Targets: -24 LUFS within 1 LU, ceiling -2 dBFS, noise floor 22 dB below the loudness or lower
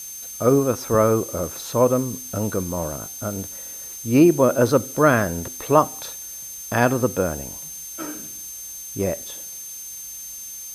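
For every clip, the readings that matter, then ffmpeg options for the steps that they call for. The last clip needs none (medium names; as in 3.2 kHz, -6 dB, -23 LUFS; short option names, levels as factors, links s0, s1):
steady tone 6.3 kHz; tone level -35 dBFS; noise floor -36 dBFS; noise floor target -45 dBFS; loudness -22.5 LUFS; peak level -1.5 dBFS; loudness target -24.0 LUFS
-> -af "bandreject=f=6300:w=30"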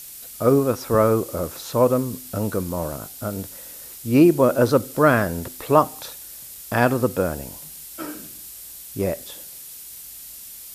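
steady tone not found; noise floor -40 dBFS; noise floor target -43 dBFS
-> -af "afftdn=nr=6:nf=-40"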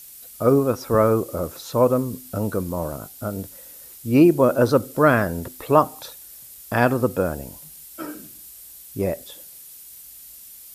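noise floor -43 dBFS; loudness -21.0 LUFS; peak level -1.5 dBFS; loudness target -24.0 LUFS
-> -af "volume=0.708"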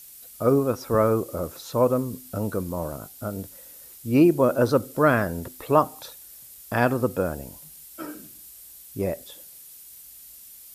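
loudness -24.0 LUFS; peak level -4.5 dBFS; noise floor -46 dBFS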